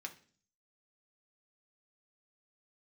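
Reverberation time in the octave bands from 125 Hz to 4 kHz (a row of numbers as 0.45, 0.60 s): 0.70, 0.65, 0.50, 0.40, 0.45, 0.50 s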